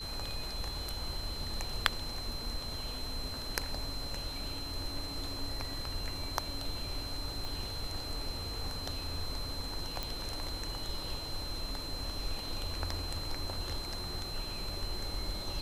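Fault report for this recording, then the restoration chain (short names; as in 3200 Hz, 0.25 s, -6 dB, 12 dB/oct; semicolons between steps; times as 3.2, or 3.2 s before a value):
tone 4100 Hz -41 dBFS
7.45 pop
10.03 pop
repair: de-click; notch 4100 Hz, Q 30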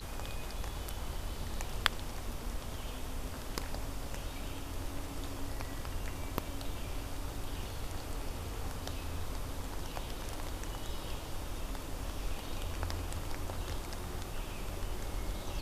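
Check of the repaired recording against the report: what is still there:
7.45 pop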